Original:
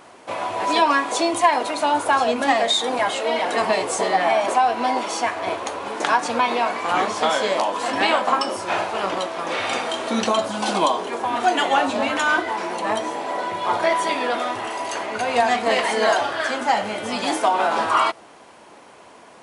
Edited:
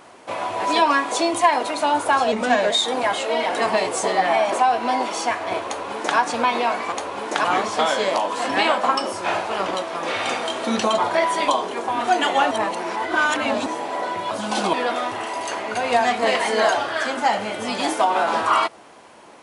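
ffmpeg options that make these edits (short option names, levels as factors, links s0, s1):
-filter_complex "[0:a]asplit=11[s0][s1][s2][s3][s4][s5][s6][s7][s8][s9][s10];[s0]atrim=end=2.324[s11];[s1]atrim=start=2.32:end=2.66,asetpts=PTS-STARTPTS,asetrate=39249,aresample=44100,atrim=end_sample=16847,asetpts=PTS-STARTPTS[s12];[s2]atrim=start=2.656:end=6.882[s13];[s3]atrim=start=5.608:end=6.132[s14];[s4]atrim=start=6.878:end=10.422[s15];[s5]atrim=start=13.668:end=14.172[s16];[s6]atrim=start=10.838:end=11.872[s17];[s7]atrim=start=11.868:end=13.022,asetpts=PTS-STARTPTS,areverse[s18];[s8]atrim=start=13.018:end=13.672[s19];[s9]atrim=start=10.418:end=10.842[s20];[s10]atrim=start=14.168[s21];[s11][s12]acrossfade=d=0.004:c1=hsin:c2=hsin[s22];[s22][s13]acrossfade=d=0.004:c1=hsin:c2=hsin[s23];[s23][s14]acrossfade=d=0.004:c1=hsin:c2=hsin[s24];[s24][s15]acrossfade=d=0.004:c1=hsin:c2=hsin[s25];[s25][s16]acrossfade=d=0.004:c1=hsin:c2=hsin[s26];[s26][s17]acrossfade=d=0.004:c1=hsin:c2=hsin[s27];[s27][s18]acrossfade=d=0.004:c1=hsin:c2=hsin[s28];[s28][s19]acrossfade=d=0.004:c1=hsin:c2=hsin[s29];[s29][s20]acrossfade=d=0.004:c1=hsin:c2=hsin[s30];[s30][s21]acrossfade=d=0.004:c1=hsin:c2=hsin"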